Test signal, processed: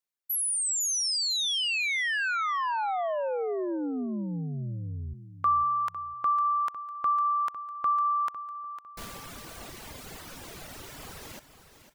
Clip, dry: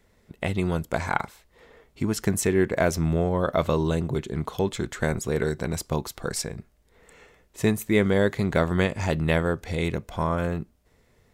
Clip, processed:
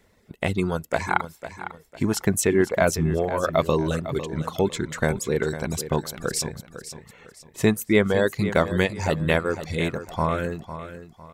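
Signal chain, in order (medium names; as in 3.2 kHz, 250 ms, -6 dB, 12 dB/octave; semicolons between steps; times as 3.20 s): reverb removal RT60 1.6 s; bass shelf 68 Hz -6 dB; on a send: feedback delay 503 ms, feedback 33%, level -12 dB; on the sum: trim +3.5 dB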